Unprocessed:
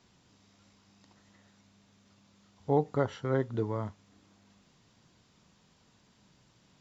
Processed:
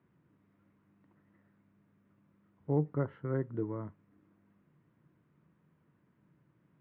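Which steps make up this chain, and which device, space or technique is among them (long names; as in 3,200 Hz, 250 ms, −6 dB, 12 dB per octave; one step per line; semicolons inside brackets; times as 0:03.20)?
bass cabinet (loudspeaker in its box 67–2,000 Hz, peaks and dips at 150 Hz +10 dB, 320 Hz +8 dB, 780 Hz −7 dB)
level −7 dB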